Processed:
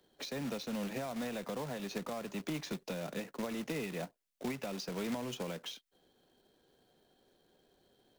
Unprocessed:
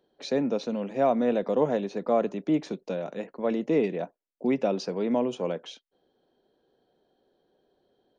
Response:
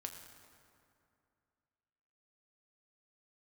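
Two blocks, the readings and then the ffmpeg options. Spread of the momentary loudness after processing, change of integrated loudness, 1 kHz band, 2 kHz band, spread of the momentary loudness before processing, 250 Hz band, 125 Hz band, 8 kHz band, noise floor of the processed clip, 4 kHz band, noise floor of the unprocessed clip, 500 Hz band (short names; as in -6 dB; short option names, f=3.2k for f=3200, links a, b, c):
5 LU, -12.0 dB, -12.5 dB, -3.0 dB, 8 LU, -11.5 dB, -6.0 dB, n/a, -81 dBFS, -1.5 dB, -79 dBFS, -15.0 dB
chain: -filter_complex "[0:a]equalizer=f=490:w=0.5:g=-8.5,acrossover=split=140|620[a][b][c];[b]acompressor=threshold=-42dB:ratio=8[d];[a][d][c]amix=inputs=3:normalize=0,alimiter=level_in=9.5dB:limit=-24dB:level=0:latency=1:release=254,volume=-9.5dB,acrossover=split=430[e][f];[f]acompressor=threshold=-48dB:ratio=4[g];[e][g]amix=inputs=2:normalize=0,acrusher=bits=2:mode=log:mix=0:aa=0.000001,volume=6dB"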